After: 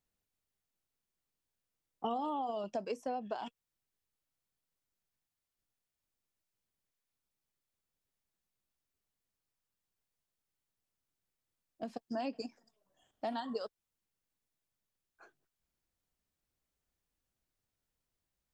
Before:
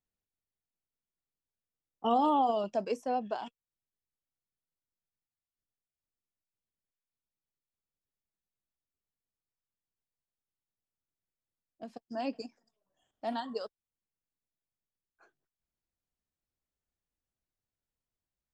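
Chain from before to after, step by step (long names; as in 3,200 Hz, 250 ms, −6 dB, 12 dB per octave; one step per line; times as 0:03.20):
downward compressor 6 to 1, threshold −39 dBFS, peak gain reduction 15 dB
level +4.5 dB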